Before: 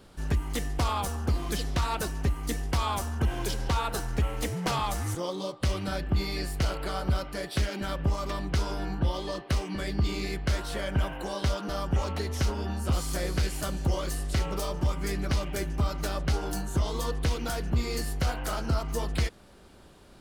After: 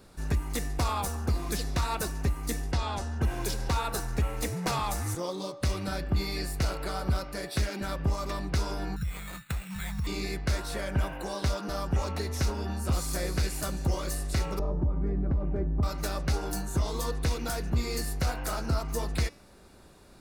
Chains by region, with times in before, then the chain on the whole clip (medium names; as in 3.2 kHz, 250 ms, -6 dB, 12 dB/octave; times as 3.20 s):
2.72–3.22 s: low-pass 5.4 kHz + peaking EQ 1.1 kHz -8 dB 0.35 oct + band-stop 2.3 kHz, Q 9.3
8.96–10.07 s: brick-wall FIR band-stop 210–1200 Hz + compression 4:1, threshold -27 dBFS + careless resampling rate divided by 8×, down none, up hold
14.59–15.83 s: low-pass 1.2 kHz + tilt shelf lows +7 dB, about 650 Hz + compression 4:1, threshold -23 dBFS
whole clip: treble shelf 6.1 kHz +4 dB; band-stop 3.1 kHz, Q 6.9; de-hum 286.2 Hz, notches 23; trim -1 dB